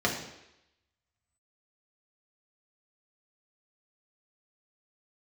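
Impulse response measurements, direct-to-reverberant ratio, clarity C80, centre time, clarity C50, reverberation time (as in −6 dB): −2.5 dB, 9.0 dB, 30 ms, 6.0 dB, 0.85 s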